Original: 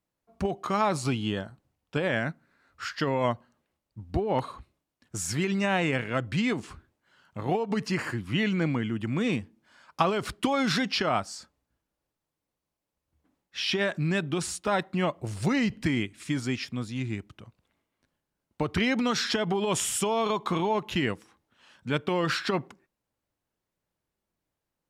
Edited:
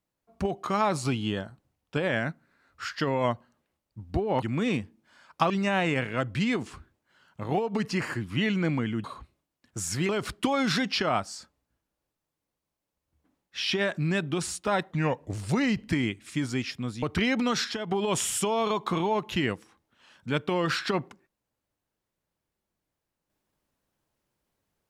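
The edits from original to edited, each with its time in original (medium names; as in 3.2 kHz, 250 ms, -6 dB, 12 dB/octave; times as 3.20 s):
4.42–5.47 s: swap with 9.01–10.09 s
14.91–15.28 s: speed 85%
16.96–18.62 s: delete
19.24–19.51 s: gain -6 dB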